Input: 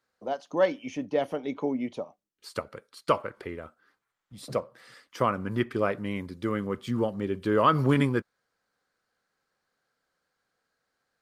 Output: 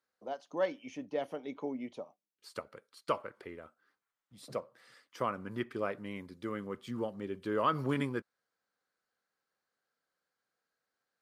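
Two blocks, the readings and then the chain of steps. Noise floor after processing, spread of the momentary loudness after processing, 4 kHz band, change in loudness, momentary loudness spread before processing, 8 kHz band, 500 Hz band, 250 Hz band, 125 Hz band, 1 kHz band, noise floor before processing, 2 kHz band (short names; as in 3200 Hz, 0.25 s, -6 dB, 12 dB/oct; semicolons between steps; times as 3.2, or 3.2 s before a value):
under -85 dBFS, 16 LU, -8.0 dB, -9.0 dB, 17 LU, -8.0 dB, -8.5 dB, -9.5 dB, -12.0 dB, -8.0 dB, -82 dBFS, -8.0 dB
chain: low shelf 100 Hz -11 dB; gain -8 dB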